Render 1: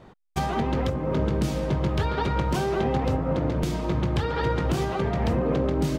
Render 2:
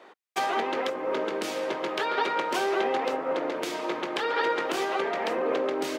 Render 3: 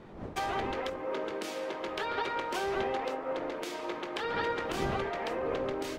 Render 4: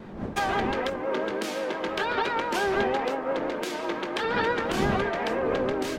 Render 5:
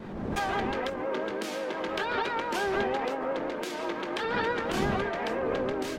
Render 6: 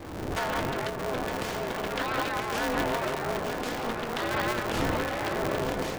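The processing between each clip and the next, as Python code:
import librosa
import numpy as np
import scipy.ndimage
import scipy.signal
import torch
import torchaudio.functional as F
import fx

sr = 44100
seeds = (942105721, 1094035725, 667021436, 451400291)

y1 = scipy.signal.sosfilt(scipy.signal.butter(4, 340.0, 'highpass', fs=sr, output='sos'), x)
y1 = fx.peak_eq(y1, sr, hz=2100.0, db=5.5, octaves=1.7)
y2 = fx.dmg_wind(y1, sr, seeds[0], corner_hz=440.0, level_db=-39.0)
y2 = fx.end_taper(y2, sr, db_per_s=120.0)
y2 = y2 * librosa.db_to_amplitude(-6.0)
y3 = fx.vibrato(y2, sr, rate_hz=5.8, depth_cents=61.0)
y3 = fx.small_body(y3, sr, hz=(210.0, 1600.0), ring_ms=45, db=7)
y3 = y3 * librosa.db_to_amplitude(6.0)
y4 = fx.pre_swell(y3, sr, db_per_s=41.0)
y4 = y4 * librosa.db_to_amplitude(-3.5)
y5 = y4 + 10.0 ** (-8.5 / 20.0) * np.pad(y4, (int(917 * sr / 1000.0), 0))[:len(y4)]
y5 = y5 * np.sign(np.sin(2.0 * np.pi * 120.0 * np.arange(len(y5)) / sr))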